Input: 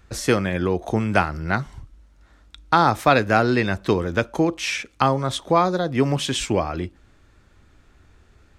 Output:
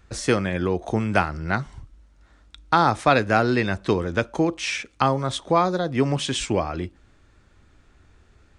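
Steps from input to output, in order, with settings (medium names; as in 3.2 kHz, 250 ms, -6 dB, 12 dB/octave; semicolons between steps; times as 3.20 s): resampled via 22.05 kHz; trim -1.5 dB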